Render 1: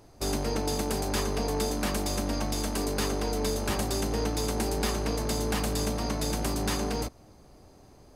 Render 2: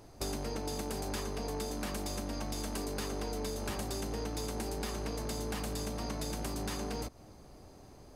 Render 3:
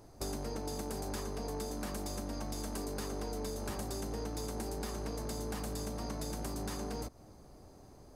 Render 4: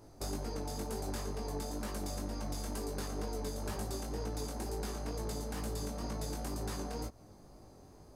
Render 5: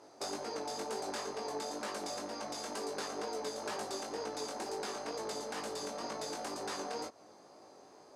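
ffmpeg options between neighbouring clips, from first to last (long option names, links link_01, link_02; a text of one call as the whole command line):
ffmpeg -i in.wav -af "acompressor=threshold=-34dB:ratio=6" out.wav
ffmpeg -i in.wav -af "equalizer=frequency=2800:width_type=o:width=1.2:gain=-6,volume=-1.5dB" out.wav
ffmpeg -i in.wav -af "flanger=delay=18:depth=4:speed=2.1,volume=2.5dB" out.wav
ffmpeg -i in.wav -af "highpass=440,lowpass=6800,volume=5dB" out.wav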